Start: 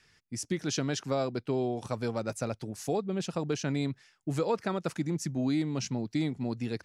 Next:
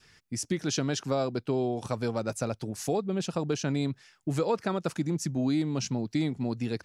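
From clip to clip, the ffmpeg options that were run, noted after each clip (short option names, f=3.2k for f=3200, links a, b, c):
-filter_complex "[0:a]adynamicequalizer=threshold=0.00126:dfrequency=2000:dqfactor=3.4:tfrequency=2000:tqfactor=3.4:attack=5:release=100:ratio=0.375:range=2.5:mode=cutabove:tftype=bell,asplit=2[a][b];[b]acompressor=threshold=-39dB:ratio=6,volume=-1dB[c];[a][c]amix=inputs=2:normalize=0"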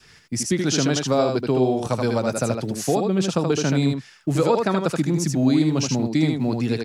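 -filter_complex "[0:a]acrossover=split=110[a][b];[a]acrusher=bits=5:mode=log:mix=0:aa=0.000001[c];[b]aecho=1:1:78:0.631[d];[c][d]amix=inputs=2:normalize=0,volume=7.5dB"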